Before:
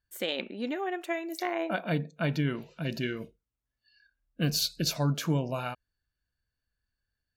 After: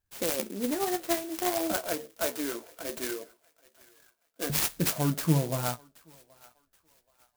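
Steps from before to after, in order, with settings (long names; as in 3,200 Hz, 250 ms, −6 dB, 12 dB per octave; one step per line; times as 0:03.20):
0:01.72–0:04.50: high-pass filter 350 Hz 24 dB per octave
flanger 0.6 Hz, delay 9.3 ms, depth 8.4 ms, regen +33%
feedback echo with a high-pass in the loop 777 ms, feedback 41%, high-pass 740 Hz, level −22.5 dB
converter with an unsteady clock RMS 0.11 ms
level +6 dB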